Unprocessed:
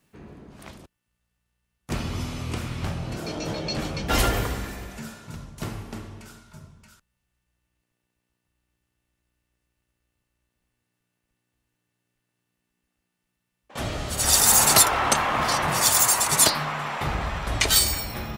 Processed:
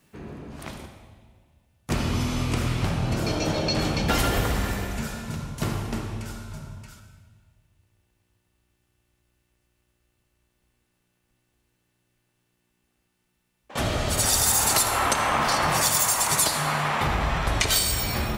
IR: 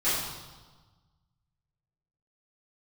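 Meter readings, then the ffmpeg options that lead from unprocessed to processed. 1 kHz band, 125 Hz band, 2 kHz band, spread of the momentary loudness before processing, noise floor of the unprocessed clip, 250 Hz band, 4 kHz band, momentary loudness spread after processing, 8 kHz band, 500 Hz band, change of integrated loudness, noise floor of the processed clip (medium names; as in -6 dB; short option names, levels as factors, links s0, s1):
0.0 dB, +3.5 dB, +0.5 dB, 21 LU, -80 dBFS, +3.5 dB, -1.5 dB, 19 LU, -3.0 dB, +1.5 dB, -2.5 dB, -74 dBFS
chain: -filter_complex "[0:a]acompressor=threshold=0.0501:ratio=4,asplit=2[s0][s1];[1:a]atrim=start_sample=2205,asetrate=31311,aresample=44100,adelay=51[s2];[s1][s2]afir=irnorm=-1:irlink=0,volume=0.0944[s3];[s0][s3]amix=inputs=2:normalize=0,volume=1.78"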